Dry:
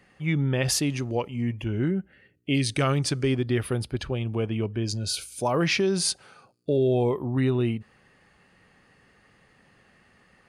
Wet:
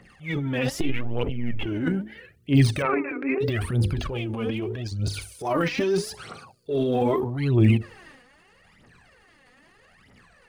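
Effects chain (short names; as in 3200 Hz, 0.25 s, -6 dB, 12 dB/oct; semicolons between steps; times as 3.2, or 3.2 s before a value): 0.81–1.66 LPC vocoder at 8 kHz pitch kept; phaser 0.79 Hz, delay 4.2 ms, feedback 73%; 2.82–3.41 brick-wall FIR band-pass 260–2700 Hz; notches 50/100/150/200/250/300/350/400/450/500 Hz; 4.58–5 compressor, threshold -26 dBFS, peak gain reduction 5 dB; transient shaper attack -8 dB, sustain +9 dB; de-esser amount 85%; record warp 45 rpm, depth 160 cents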